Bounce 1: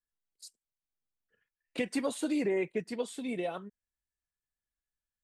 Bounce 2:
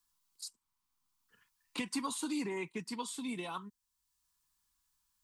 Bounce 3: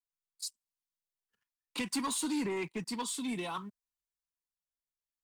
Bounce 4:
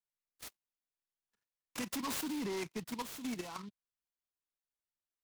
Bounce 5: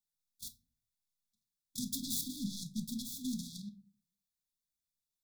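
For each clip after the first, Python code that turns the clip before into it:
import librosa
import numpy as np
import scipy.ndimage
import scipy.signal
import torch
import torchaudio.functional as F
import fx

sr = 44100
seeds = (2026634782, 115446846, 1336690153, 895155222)

y1 = fx.curve_eq(x, sr, hz=(280.0, 620.0, 990.0, 1700.0, 4700.0), db=(0, -15, 12, -3, 8))
y1 = fx.band_squash(y1, sr, depth_pct=40)
y1 = y1 * librosa.db_to_amplitude(-3.5)
y2 = fx.leveller(y1, sr, passes=2)
y2 = fx.band_widen(y2, sr, depth_pct=40)
y2 = y2 * librosa.db_to_amplitude(-2.5)
y3 = fx.level_steps(y2, sr, step_db=9)
y3 = fx.noise_mod_delay(y3, sr, seeds[0], noise_hz=3300.0, depth_ms=0.063)
y3 = y3 * librosa.db_to_amplitude(-1.0)
y4 = fx.brickwall_bandstop(y3, sr, low_hz=270.0, high_hz=3300.0)
y4 = fx.room_shoebox(y4, sr, seeds[1], volume_m3=230.0, walls='furnished', distance_m=0.66)
y4 = y4 * librosa.db_to_amplitude(3.5)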